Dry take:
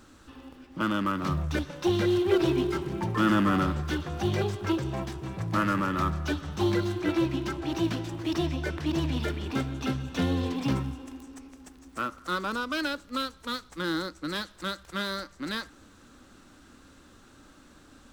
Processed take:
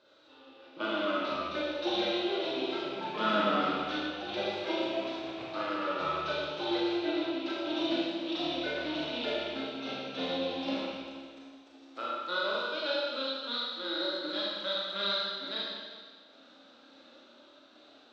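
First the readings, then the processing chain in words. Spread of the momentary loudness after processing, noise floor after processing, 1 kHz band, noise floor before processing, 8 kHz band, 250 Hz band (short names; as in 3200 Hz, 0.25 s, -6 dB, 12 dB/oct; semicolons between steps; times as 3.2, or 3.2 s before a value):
8 LU, -58 dBFS, -2.0 dB, -55 dBFS, under -10 dB, -7.0 dB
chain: rattling part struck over -32 dBFS, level -33 dBFS; flange 0.16 Hz, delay 1.9 ms, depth 2.9 ms, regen -42%; random-step tremolo; speaker cabinet 390–4500 Hz, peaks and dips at 600 Hz +9 dB, 1100 Hz -5 dB, 1800 Hz -6 dB, 3800 Hz +9 dB; Schroeder reverb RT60 1.6 s, combs from 26 ms, DRR -5.5 dB; gain -1 dB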